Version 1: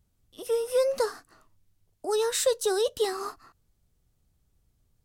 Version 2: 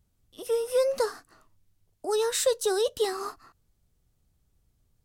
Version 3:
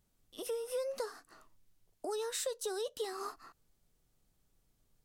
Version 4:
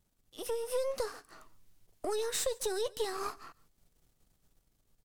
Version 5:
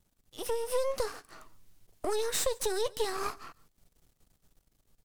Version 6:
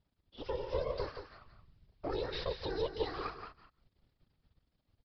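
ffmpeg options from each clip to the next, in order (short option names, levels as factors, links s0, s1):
-af anull
-af "acompressor=threshold=0.0126:ratio=3,equalizer=f=71:w=0.71:g=-12"
-af "aeval=exprs='if(lt(val(0),0),0.447*val(0),val(0))':c=same,dynaudnorm=f=120:g=9:m=1.58,aecho=1:1:141:0.0668,volume=1.33"
-af "aeval=exprs='if(lt(val(0),0),0.447*val(0),val(0))':c=same,volume=1.58"
-filter_complex "[0:a]afftfilt=real='hypot(re,im)*cos(2*PI*random(0))':imag='hypot(re,im)*sin(2*PI*random(1))':win_size=512:overlap=0.75,asplit=2[s0][s1];[s1]aecho=0:1:174:0.355[s2];[s0][s2]amix=inputs=2:normalize=0,aresample=11025,aresample=44100"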